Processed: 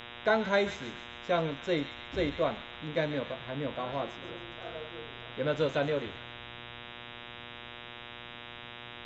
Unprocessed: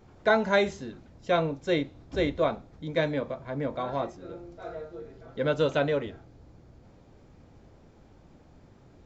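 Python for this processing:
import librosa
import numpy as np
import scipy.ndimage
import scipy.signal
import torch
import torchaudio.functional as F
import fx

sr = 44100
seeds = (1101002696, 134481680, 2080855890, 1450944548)

y = fx.echo_wet_highpass(x, sr, ms=137, feedback_pct=52, hz=1800.0, wet_db=-8.5)
y = fx.dmg_buzz(y, sr, base_hz=120.0, harmonics=32, level_db=-42.0, tilt_db=0, odd_only=False)
y = y * librosa.db_to_amplitude(-4.0)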